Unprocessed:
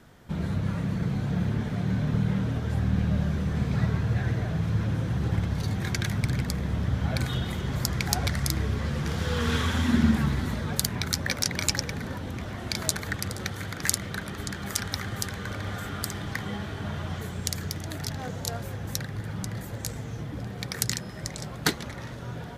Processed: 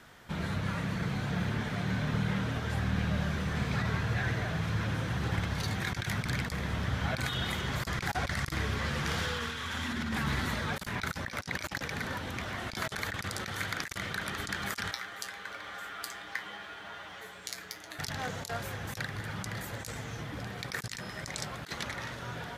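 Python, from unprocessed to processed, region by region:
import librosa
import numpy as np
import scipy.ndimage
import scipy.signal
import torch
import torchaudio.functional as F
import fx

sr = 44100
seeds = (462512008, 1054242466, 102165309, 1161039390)

y = fx.chain(x, sr, fx.bass_treble(bass_db=-15, treble_db=-4),
    fx.quant_companded(bits=8),
    fx.comb_fb(f0_hz=62.0, decay_s=0.19, harmonics='odd', damping=0.0, mix_pct=80), at=(14.91, 17.99))
y = fx.tilt_shelf(y, sr, db=-9.5, hz=920.0)
y = fx.over_compress(y, sr, threshold_db=-31.0, ratio=-1.0)
y = fx.high_shelf(y, sr, hz=2800.0, db=-11.5)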